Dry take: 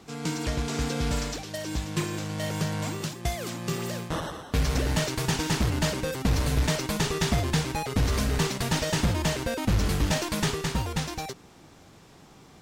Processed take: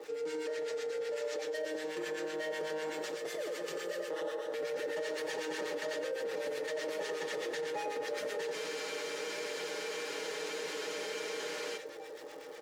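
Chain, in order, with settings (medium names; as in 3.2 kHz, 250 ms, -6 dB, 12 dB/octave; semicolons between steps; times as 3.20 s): ladder high-pass 410 Hz, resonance 65%; high-order bell 780 Hz -9 dB 1.1 oct; comb 6.4 ms, depth 79%; reverse bouncing-ball echo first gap 90 ms, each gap 1.3×, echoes 5; harmonic tremolo 8 Hz, depth 70%, crossover 1.2 kHz; treble shelf 5.6 kHz -8.5 dB; crackle 210 per s -59 dBFS; peak limiter -34.5 dBFS, peak gain reduction 10 dB; small resonant body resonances 580/840/1800 Hz, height 17 dB, ringing for 75 ms; spectral freeze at 8.54 s, 3.21 s; level flattener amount 50%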